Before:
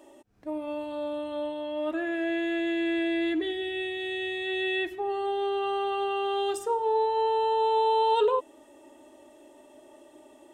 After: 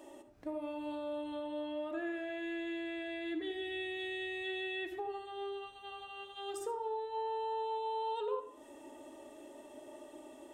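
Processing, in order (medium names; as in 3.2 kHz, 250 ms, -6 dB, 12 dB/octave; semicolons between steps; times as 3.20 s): compression 6:1, threshold -37 dBFS, peak gain reduction 16.5 dB; de-hum 198.2 Hz, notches 28; on a send: reverberation RT60 0.35 s, pre-delay 57 ms, DRR 8 dB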